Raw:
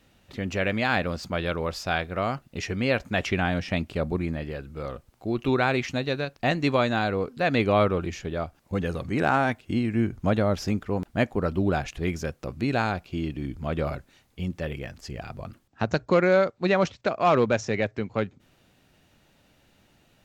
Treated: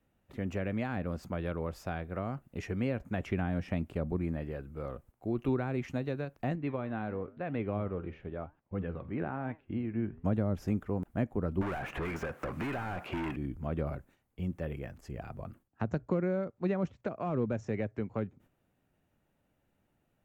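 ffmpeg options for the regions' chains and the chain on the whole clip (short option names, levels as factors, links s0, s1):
-filter_complex "[0:a]asettb=1/sr,asplit=3[s0][s1][s2];[s0]atrim=end=6.554[s3];[s1]atrim=start=6.55:end=10.25,asetpts=PTS-STARTPTS,afade=t=in:d=0.004:c=qsin,afade=t=out:st=3.696:d=0.004:c=qsin,flanger=delay=6.1:depth=8.5:regen=83:speed=1:shape=triangular,lowpass=f=3400:w=0.5412,lowpass=f=3400:w=1.3066[s4];[s2]atrim=start=10.246[s5];[s3][s4]acrossfade=d=0.004:c1=hsin:c2=qsin[s6];[s6][s5]acrossfade=d=0.004:c1=qsin:c2=hsin,asettb=1/sr,asplit=3[s7][s8][s9];[s7]atrim=end=11.614[s10];[s8]atrim=start=11.61:end=13.36,asetpts=PTS-STARTPTS,afade=t=in:d=0.004:c=qsin,afade=t=out:st=1.746:d=0.004:c=qsin,asplit=2[s11][s12];[s12]highpass=f=720:p=1,volume=63.1,asoftclip=type=tanh:threshold=0.266[s13];[s11][s13]amix=inputs=2:normalize=0,lowpass=f=2400:p=1,volume=0.501,acrossover=split=930|2800[s14][s15][s16];[s14]acompressor=threshold=0.0251:ratio=4[s17];[s15]acompressor=threshold=0.0398:ratio=4[s18];[s16]acompressor=threshold=0.00794:ratio=4[s19];[s17][s18][s19]amix=inputs=3:normalize=0[s20];[s9]atrim=start=13.356[s21];[s10][s20]acrossfade=d=0.004:c1=hsin:c2=qsin[s22];[s22][s21]acrossfade=d=0.004:c1=qsin:c2=hsin,agate=range=0.398:threshold=0.00251:ratio=16:detection=peak,equalizer=f=4500:w=0.75:g=-14.5,acrossover=split=340[s23][s24];[s24]acompressor=threshold=0.0282:ratio=10[s25];[s23][s25]amix=inputs=2:normalize=0,volume=0.596"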